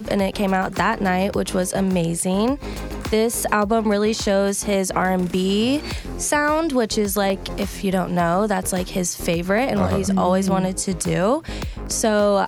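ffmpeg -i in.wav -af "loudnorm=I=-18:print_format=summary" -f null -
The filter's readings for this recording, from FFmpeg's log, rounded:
Input Integrated:    -20.7 LUFS
Input True Peak:      -3.3 dBTP
Input LRA:             1.2 LU
Input Threshold:     -30.7 LUFS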